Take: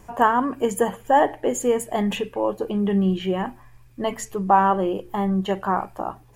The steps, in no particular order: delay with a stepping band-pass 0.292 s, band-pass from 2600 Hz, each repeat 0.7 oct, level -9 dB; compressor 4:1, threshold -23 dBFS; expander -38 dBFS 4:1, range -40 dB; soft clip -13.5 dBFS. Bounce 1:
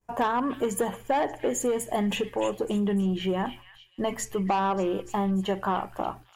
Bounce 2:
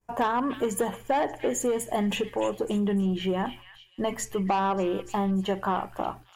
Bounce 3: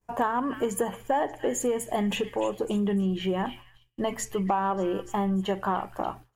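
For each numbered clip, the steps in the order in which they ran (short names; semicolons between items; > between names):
expander > soft clip > compressor > delay with a stepping band-pass; expander > soft clip > delay with a stepping band-pass > compressor; delay with a stepping band-pass > expander > compressor > soft clip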